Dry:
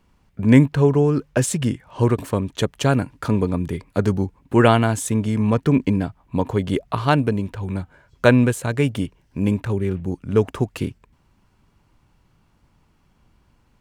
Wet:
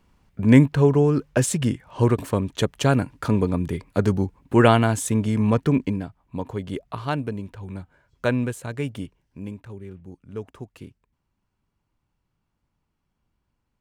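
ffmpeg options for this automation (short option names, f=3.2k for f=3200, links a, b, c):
-af "volume=-1dB,afade=t=out:st=5.56:d=0.49:silence=0.421697,afade=t=out:st=9.05:d=0.49:silence=0.421697"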